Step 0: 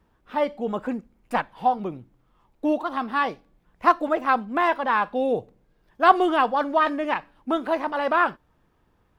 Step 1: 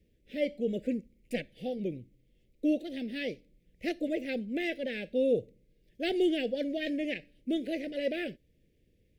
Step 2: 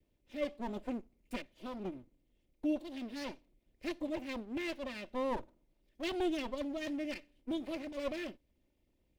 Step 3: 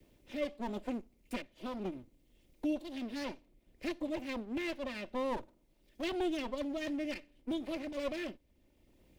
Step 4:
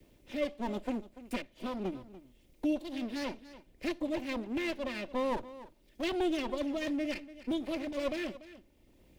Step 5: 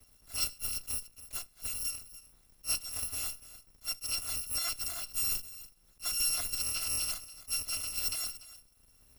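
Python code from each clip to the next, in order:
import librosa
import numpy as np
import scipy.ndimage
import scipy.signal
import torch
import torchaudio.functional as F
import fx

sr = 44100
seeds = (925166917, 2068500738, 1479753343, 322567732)

y1 = scipy.signal.sosfilt(scipy.signal.ellip(3, 1.0, 60, [540.0, 2100.0], 'bandstop', fs=sr, output='sos'), x)
y1 = y1 * librosa.db_to_amplitude(-2.5)
y2 = fx.lower_of_two(y1, sr, delay_ms=3.3)
y2 = y2 * librosa.db_to_amplitude(-5.5)
y3 = fx.band_squash(y2, sr, depth_pct=40)
y3 = y3 * librosa.db_to_amplitude(1.0)
y4 = y3 + 10.0 ** (-16.0 / 20.0) * np.pad(y3, (int(290 * sr / 1000.0), 0))[:len(y3)]
y4 = y4 * librosa.db_to_amplitude(3.0)
y5 = fx.bit_reversed(y4, sr, seeds[0], block=256)
y5 = fx.attack_slew(y5, sr, db_per_s=350.0)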